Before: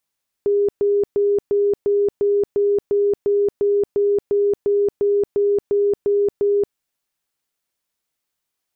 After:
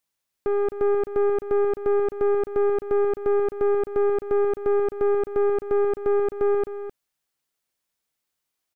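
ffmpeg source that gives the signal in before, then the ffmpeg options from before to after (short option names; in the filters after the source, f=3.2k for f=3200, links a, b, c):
-f lavfi -i "aevalsrc='0.2*sin(2*PI*406*mod(t,0.35))*lt(mod(t,0.35),92/406)':d=6.3:s=44100"
-filter_complex "[0:a]aeval=exprs='(tanh(10*val(0)+0.45)-tanh(0.45))/10':c=same,asplit=2[a][b];[b]aecho=0:1:259:0.299[c];[a][c]amix=inputs=2:normalize=0"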